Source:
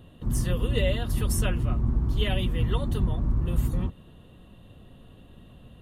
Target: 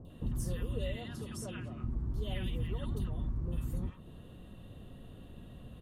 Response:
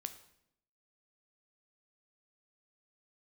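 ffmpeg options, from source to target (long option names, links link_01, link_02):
-filter_complex "[0:a]acompressor=threshold=-32dB:ratio=6,asettb=1/sr,asplit=3[link_01][link_02][link_03];[link_01]atrim=end=0.964[link_04];[link_02]atrim=start=0.96:end=1.84,asetpts=PTS-STARTPTS,afade=type=in:duration=0.004:curve=qsin,afade=type=out:start_time=0.876:duration=0.004:curve=qsin,highpass=140,lowpass=7800[link_05];[link_03]atrim=start=1.836[link_06];[link_04][link_05]acrossfade=duration=0.004:curve1=hsin:curve2=qsin[link_07];[link_07][link_06]acrossfade=duration=0.004:curve1=qsin:curve2=hsin,acrossover=split=1000|3000[link_08][link_09][link_10];[link_10]adelay=50[link_11];[link_09]adelay=100[link_12];[link_08][link_12][link_11]amix=inputs=3:normalize=0"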